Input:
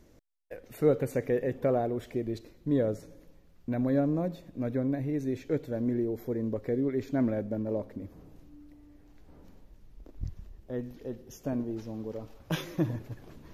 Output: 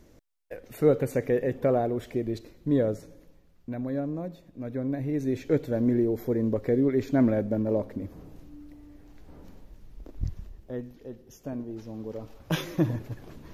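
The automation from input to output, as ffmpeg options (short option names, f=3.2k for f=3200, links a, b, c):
-af "volume=19.5dB,afade=t=out:st=2.75:d=1.07:silence=0.446684,afade=t=in:st=4.64:d=0.89:silence=0.334965,afade=t=out:st=10.34:d=0.57:silence=0.375837,afade=t=in:st=11.66:d=0.93:silence=0.446684"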